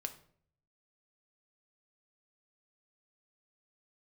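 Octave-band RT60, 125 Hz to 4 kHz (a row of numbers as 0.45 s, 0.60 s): 1.0 s, 0.70 s, 0.65 s, 0.50 s, 0.45 s, 0.40 s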